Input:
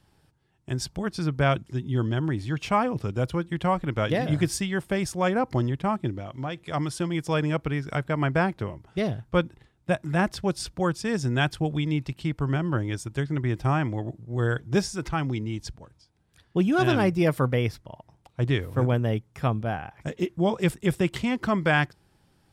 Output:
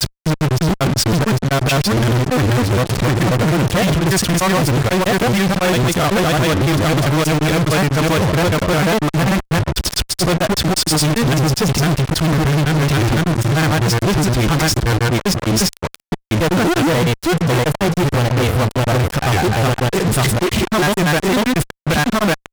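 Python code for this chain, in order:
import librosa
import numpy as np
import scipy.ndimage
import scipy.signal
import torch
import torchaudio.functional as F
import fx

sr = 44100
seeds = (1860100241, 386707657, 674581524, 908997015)

y = fx.granulator(x, sr, seeds[0], grain_ms=100.0, per_s=20.0, spray_ms=966.0, spread_st=0)
y = fx.rider(y, sr, range_db=4, speed_s=0.5)
y = fx.fuzz(y, sr, gain_db=48.0, gate_db=-43.0)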